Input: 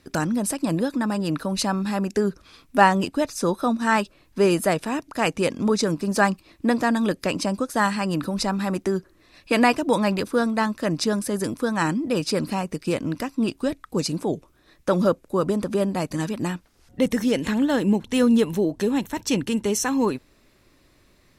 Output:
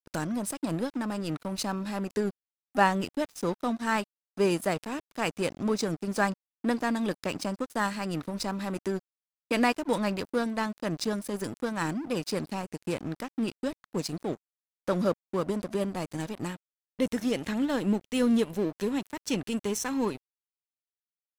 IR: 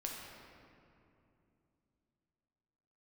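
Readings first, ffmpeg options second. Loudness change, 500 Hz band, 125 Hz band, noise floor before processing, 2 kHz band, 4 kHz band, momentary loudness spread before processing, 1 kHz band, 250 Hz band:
-7.0 dB, -7.0 dB, -7.5 dB, -59 dBFS, -7.0 dB, -7.0 dB, 7 LU, -7.5 dB, -7.0 dB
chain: -af "equalizer=f=1.1k:t=o:w=1.5:g=-2,aeval=exprs='sgn(val(0))*max(abs(val(0))-0.02,0)':c=same,volume=-5dB"

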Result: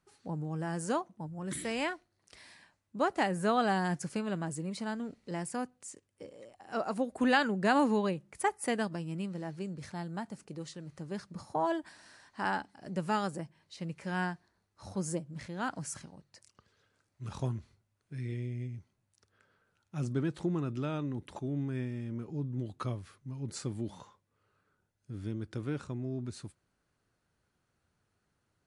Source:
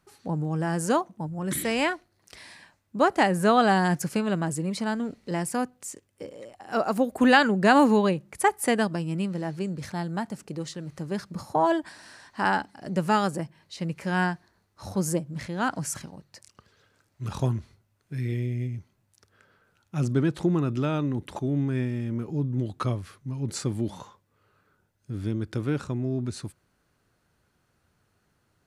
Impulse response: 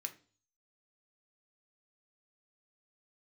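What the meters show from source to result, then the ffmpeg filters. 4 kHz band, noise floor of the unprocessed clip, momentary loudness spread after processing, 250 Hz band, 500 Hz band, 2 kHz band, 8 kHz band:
-8.5 dB, -71 dBFS, 17 LU, -8.5 dB, -8.5 dB, -8.5 dB, -8.5 dB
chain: -af "volume=-8dB" -ar 24000 -c:a libmp3lame -b:a 56k

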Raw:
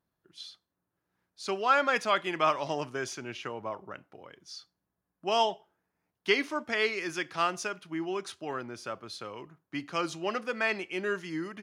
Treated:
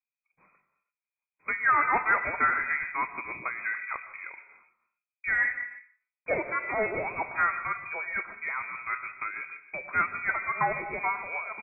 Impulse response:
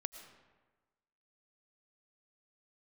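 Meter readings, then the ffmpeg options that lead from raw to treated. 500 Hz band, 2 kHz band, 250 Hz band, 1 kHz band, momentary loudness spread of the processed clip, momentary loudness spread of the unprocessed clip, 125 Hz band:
-5.0 dB, +6.5 dB, -8.5 dB, +2.5 dB, 14 LU, 19 LU, -2.5 dB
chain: -filter_complex "[0:a]agate=range=-27dB:threshold=-55dB:ratio=16:detection=peak,lowshelf=f=390:g=7.5,bandreject=f=870:w=5.5,bandreject=f=122.1:t=h:w=4,bandreject=f=244.2:t=h:w=4,bandreject=f=366.3:t=h:w=4,bandreject=f=488.4:t=h:w=4,bandreject=f=610.5:t=h:w=4,bandreject=f=732.6:t=h:w=4,bandreject=f=854.7:t=h:w=4,bandreject=f=976.8:t=h:w=4,bandreject=f=1.0989k:t=h:w=4,bandreject=f=1.221k:t=h:w=4,bandreject=f=1.3431k:t=h:w=4,bandreject=f=1.4652k:t=h:w=4,bandreject=f=1.5873k:t=h:w=4,bandreject=f=1.7094k:t=h:w=4,acrossover=split=710|900[a][b][c];[a]acompressor=threshold=-44dB:ratio=6[d];[b]aecho=1:1:20|46|79.8|123.7|180.9:0.631|0.398|0.251|0.158|0.1[e];[c]aphaser=in_gain=1:out_gain=1:delay=1.4:decay=0.37:speed=1:type=sinusoidal[f];[d][e][f]amix=inputs=3:normalize=0,asoftclip=type=tanh:threshold=-23.5dB,asplit=2[g][h];[1:a]atrim=start_sample=2205,afade=t=out:st=0.39:d=0.01,atrim=end_sample=17640,lowpass=f=4.2k:w=0.5412,lowpass=f=4.2k:w=1.3066[i];[h][i]afir=irnorm=-1:irlink=0,volume=9dB[j];[g][j]amix=inputs=2:normalize=0,tremolo=f=6.6:d=0.35,lowpass=f=2.2k:t=q:w=0.5098,lowpass=f=2.2k:t=q:w=0.6013,lowpass=f=2.2k:t=q:w=0.9,lowpass=f=2.2k:t=q:w=2.563,afreqshift=-2600,volume=-1.5dB"

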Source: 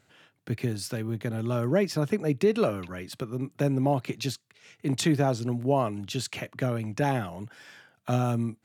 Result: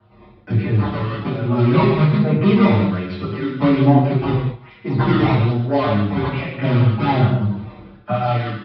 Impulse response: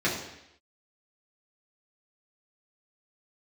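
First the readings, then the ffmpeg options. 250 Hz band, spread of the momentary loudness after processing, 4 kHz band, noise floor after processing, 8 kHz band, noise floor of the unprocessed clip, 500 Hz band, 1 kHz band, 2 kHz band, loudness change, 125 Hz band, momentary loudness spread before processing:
+11.5 dB, 10 LU, +5.5 dB, -47 dBFS, under -25 dB, -69 dBFS, +6.5 dB, +11.0 dB, +10.0 dB, +10.5 dB, +13.0 dB, 11 LU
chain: -filter_complex "[0:a]bandreject=f=960:w=12,aecho=1:1:163:0.0708,acrossover=split=190[a][b];[b]asoftclip=type=tanh:threshold=-23.5dB[c];[a][c]amix=inputs=2:normalize=0,acrusher=samples=17:mix=1:aa=0.000001:lfo=1:lforange=27.2:lforate=1.2,aresample=11025,aresample=44100[d];[1:a]atrim=start_sample=2205,afade=t=out:st=0.17:d=0.01,atrim=end_sample=7938,asetrate=24255,aresample=44100[e];[d][e]afir=irnorm=-1:irlink=0,asplit=2[f][g];[g]adelay=6,afreqshift=-0.4[h];[f][h]amix=inputs=2:normalize=1,volume=-2dB"

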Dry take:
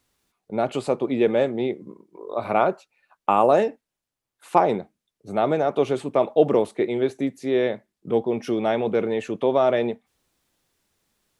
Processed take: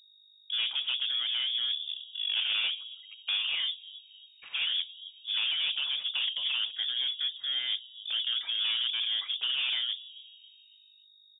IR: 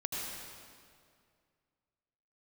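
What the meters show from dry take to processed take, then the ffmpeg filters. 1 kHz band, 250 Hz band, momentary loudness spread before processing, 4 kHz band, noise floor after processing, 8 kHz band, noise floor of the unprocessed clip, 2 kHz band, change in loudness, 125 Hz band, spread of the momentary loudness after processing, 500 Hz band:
-28.0 dB, under -40 dB, 11 LU, +17.5 dB, -60 dBFS, n/a, under -85 dBFS, -0.5 dB, -6.0 dB, under -40 dB, 10 LU, under -40 dB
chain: -filter_complex "[0:a]afftfilt=real='re*lt(hypot(re,im),0.251)':imag='im*lt(hypot(re,im),0.251)':win_size=1024:overlap=0.75,anlmdn=0.000398,highpass=f=280:w=0.5412,highpass=f=280:w=1.3066,acrossover=split=510|1300[a][b][c];[a]asplit=5[d][e][f][g][h];[e]adelay=273,afreqshift=120,volume=-13dB[i];[f]adelay=546,afreqshift=240,volume=-20.3dB[j];[g]adelay=819,afreqshift=360,volume=-27.7dB[k];[h]adelay=1092,afreqshift=480,volume=-35dB[l];[d][i][j][k][l]amix=inputs=5:normalize=0[m];[c]acompressor=threshold=-53dB:ratio=10[n];[m][b][n]amix=inputs=3:normalize=0,asoftclip=type=tanh:threshold=-31.5dB,adynamicsmooth=sensitivity=3.5:basefreq=2.8k,aeval=exprs='val(0)+0.000501*(sin(2*PI*50*n/s)+sin(2*PI*2*50*n/s)/2+sin(2*PI*3*50*n/s)/3+sin(2*PI*4*50*n/s)/4+sin(2*PI*5*50*n/s)/5)':c=same,lowpass=f=3.2k:t=q:w=0.5098,lowpass=f=3.2k:t=q:w=0.6013,lowpass=f=3.2k:t=q:w=0.9,lowpass=f=3.2k:t=q:w=2.563,afreqshift=-3800,volume=7.5dB"

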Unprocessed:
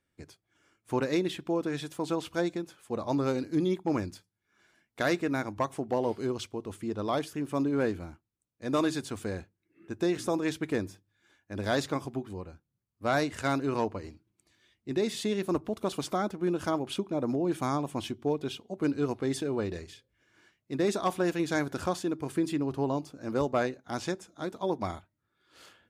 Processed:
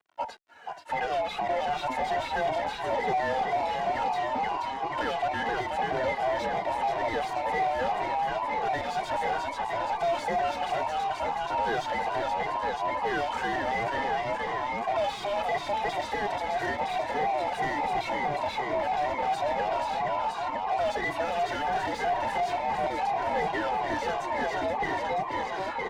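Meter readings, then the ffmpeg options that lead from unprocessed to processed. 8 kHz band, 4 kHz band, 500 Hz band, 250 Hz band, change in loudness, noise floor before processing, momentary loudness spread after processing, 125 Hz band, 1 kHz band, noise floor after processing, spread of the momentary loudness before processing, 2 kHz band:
-4.0 dB, +3.0 dB, +1.5 dB, -9.5 dB, +2.5 dB, -82 dBFS, 3 LU, -7.0 dB, +11.5 dB, -37 dBFS, 9 LU, +7.0 dB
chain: -filter_complex "[0:a]afftfilt=real='real(if(between(b,1,1008),(2*floor((b-1)/48)+1)*48-b,b),0)':imag='imag(if(between(b,1,1008),(2*floor((b-1)/48)+1)*48-b,b),0)*if(between(b,1,1008),-1,1)':win_size=2048:overlap=0.75,acrossover=split=240|1800[a][b][c];[a]acompressor=threshold=-43dB:ratio=4[d];[b]acompressor=threshold=-39dB:ratio=4[e];[c]acompressor=threshold=-39dB:ratio=4[f];[d][e][f]amix=inputs=3:normalize=0,asplit=8[g][h][i][j][k][l][m][n];[h]adelay=480,afreqshift=56,volume=-7dB[o];[i]adelay=960,afreqshift=112,volume=-11.7dB[p];[j]adelay=1440,afreqshift=168,volume=-16.5dB[q];[k]adelay=1920,afreqshift=224,volume=-21.2dB[r];[l]adelay=2400,afreqshift=280,volume=-25.9dB[s];[m]adelay=2880,afreqshift=336,volume=-30.7dB[t];[n]adelay=3360,afreqshift=392,volume=-35.4dB[u];[g][o][p][q][r][s][t][u]amix=inputs=8:normalize=0,dynaudnorm=f=560:g=5:m=5dB,acrusher=bits=11:mix=0:aa=0.000001,asplit=2[v][w];[w]highpass=f=720:p=1,volume=32dB,asoftclip=type=tanh:threshold=-16.5dB[x];[v][x]amix=inputs=2:normalize=0,lowpass=f=1.4k:p=1,volume=-6dB,lowpass=f=3k:p=1,asplit=2[y][z];[z]adelay=2,afreqshift=-2.9[aa];[y][aa]amix=inputs=2:normalize=1"

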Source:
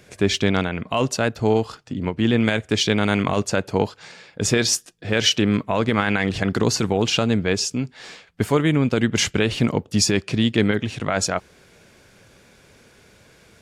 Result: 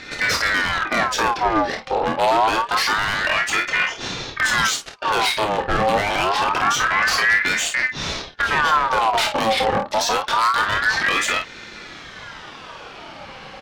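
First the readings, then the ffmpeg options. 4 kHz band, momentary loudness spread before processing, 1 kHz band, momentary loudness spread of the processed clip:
+1.5 dB, 7 LU, +10.5 dB, 19 LU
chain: -filter_complex "[0:a]asplit=2[a][b];[b]alimiter=limit=-14dB:level=0:latency=1,volume=-3dB[c];[a][c]amix=inputs=2:normalize=0,equalizer=f=125:t=o:w=1:g=11,equalizer=f=250:t=o:w=1:g=-4,equalizer=f=500:t=o:w=1:g=6,equalizer=f=1k:t=o:w=1:g=7,equalizer=f=2k:t=o:w=1:g=7,equalizer=f=4k:t=o:w=1:g=10,equalizer=f=8k:t=o:w=1:g=-4,acompressor=threshold=-12dB:ratio=6,aemphasis=mode=reproduction:type=50fm,asoftclip=type=tanh:threshold=-19dB,aecho=1:1:27|52:0.501|0.398,aeval=exprs='val(0)*sin(2*PI*1300*n/s+1300*0.5/0.26*sin(2*PI*0.26*n/s))':c=same,volume=4.5dB"

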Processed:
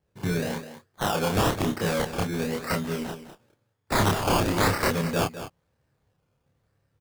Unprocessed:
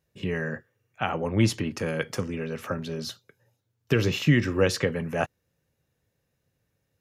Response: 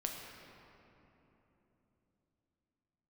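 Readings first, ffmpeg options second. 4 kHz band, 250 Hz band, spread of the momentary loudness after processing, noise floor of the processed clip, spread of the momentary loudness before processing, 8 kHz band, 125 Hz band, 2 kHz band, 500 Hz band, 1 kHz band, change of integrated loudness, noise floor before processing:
+2.5 dB, -0.5 dB, 13 LU, -74 dBFS, 12 LU, +5.0 dB, -1.5 dB, +0.5 dB, +0.5 dB, +8.0 dB, +1.0 dB, -77 dBFS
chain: -filter_complex "[0:a]lowshelf=f=190:g=4.5,acrossover=split=620|2300[a][b][c];[b]dynaudnorm=f=560:g=3:m=5dB[d];[a][d][c]amix=inputs=3:normalize=0,acrusher=samples=18:mix=1:aa=0.000001:lfo=1:lforange=10.8:lforate=0.99,aeval=exprs='(mod(6.68*val(0)+1,2)-1)/6.68':c=same,asplit=2[e][f];[f]adelay=29,volume=-2dB[g];[e][g]amix=inputs=2:normalize=0,asplit=2[h][i];[i]aecho=0:1:206:0.251[j];[h][j]amix=inputs=2:normalize=0,volume=-1.5dB"

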